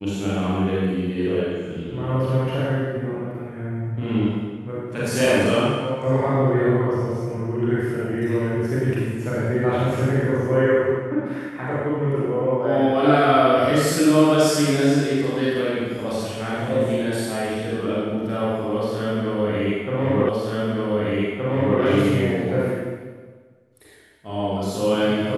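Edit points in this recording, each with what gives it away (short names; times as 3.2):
20.29 repeat of the last 1.52 s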